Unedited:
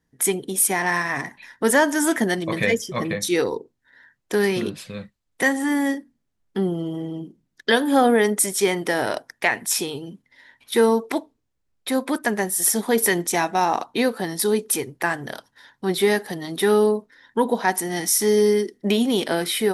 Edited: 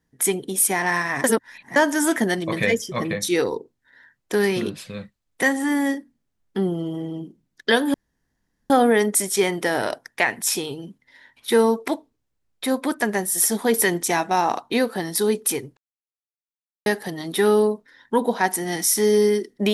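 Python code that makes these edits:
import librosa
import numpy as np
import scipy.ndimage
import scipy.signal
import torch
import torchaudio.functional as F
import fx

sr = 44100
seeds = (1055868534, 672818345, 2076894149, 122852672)

y = fx.edit(x, sr, fx.reverse_span(start_s=1.24, length_s=0.52),
    fx.insert_room_tone(at_s=7.94, length_s=0.76),
    fx.silence(start_s=15.01, length_s=1.09), tone=tone)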